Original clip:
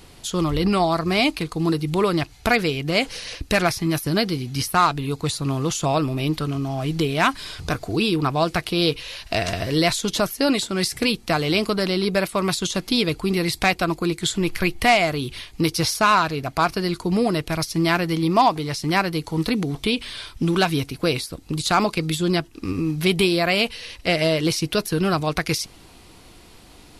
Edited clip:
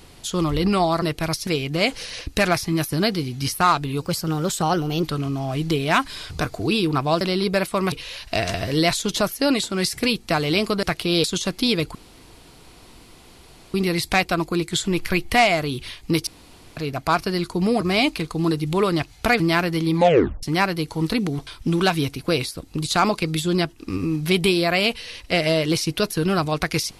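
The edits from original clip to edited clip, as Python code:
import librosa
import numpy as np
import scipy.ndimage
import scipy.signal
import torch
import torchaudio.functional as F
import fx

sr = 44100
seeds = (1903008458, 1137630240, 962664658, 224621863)

y = fx.edit(x, sr, fx.swap(start_s=1.02, length_s=1.59, other_s=17.31, other_length_s=0.45),
    fx.speed_span(start_s=5.16, length_s=1.16, speed=1.15),
    fx.swap(start_s=8.5, length_s=0.41, other_s=11.82, other_length_s=0.71),
    fx.insert_room_tone(at_s=13.24, length_s=1.79),
    fx.room_tone_fill(start_s=15.77, length_s=0.5),
    fx.tape_stop(start_s=18.28, length_s=0.51),
    fx.cut(start_s=19.83, length_s=0.39), tone=tone)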